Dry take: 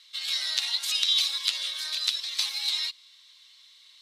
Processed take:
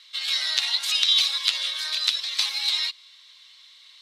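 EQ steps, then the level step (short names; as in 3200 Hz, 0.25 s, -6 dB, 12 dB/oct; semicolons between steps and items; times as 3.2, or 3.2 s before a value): low shelf 400 Hz -6 dB; high shelf 4800 Hz -9 dB; +7.5 dB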